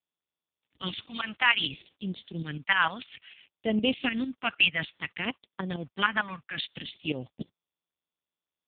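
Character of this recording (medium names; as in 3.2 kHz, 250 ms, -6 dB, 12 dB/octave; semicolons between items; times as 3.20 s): phasing stages 2, 0.59 Hz, lowest notch 380–1500 Hz; a quantiser's noise floor 10-bit, dither none; tremolo saw up 6.6 Hz, depth 70%; AMR-NB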